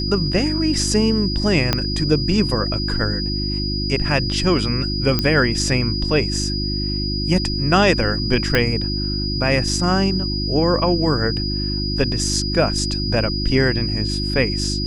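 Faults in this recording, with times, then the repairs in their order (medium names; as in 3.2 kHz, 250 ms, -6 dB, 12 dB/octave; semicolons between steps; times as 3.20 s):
hum 50 Hz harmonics 7 -24 dBFS
whine 4.9 kHz -25 dBFS
1.73 s: pop -2 dBFS
5.19 s: pop -5 dBFS
8.55 s: pop -3 dBFS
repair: de-click; band-stop 4.9 kHz, Q 30; de-hum 50 Hz, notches 7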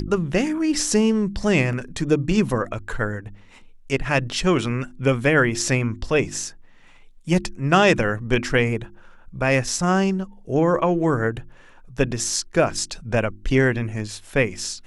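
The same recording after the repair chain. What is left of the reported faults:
1.73 s: pop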